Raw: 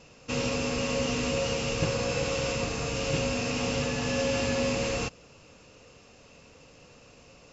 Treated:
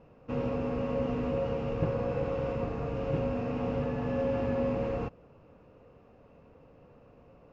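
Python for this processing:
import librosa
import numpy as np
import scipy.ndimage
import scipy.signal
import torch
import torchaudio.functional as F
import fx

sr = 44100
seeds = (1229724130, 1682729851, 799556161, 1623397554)

y = scipy.signal.sosfilt(scipy.signal.butter(2, 1100.0, 'lowpass', fs=sr, output='sos'), x)
y = y * 10.0 ** (-1.0 / 20.0)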